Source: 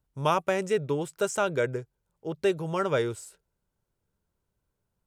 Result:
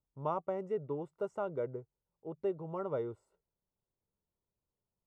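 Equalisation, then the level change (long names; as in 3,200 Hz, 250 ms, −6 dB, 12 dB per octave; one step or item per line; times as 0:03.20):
Savitzky-Golay smoothing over 65 samples
low-shelf EQ 150 Hz −5.5 dB
−8.5 dB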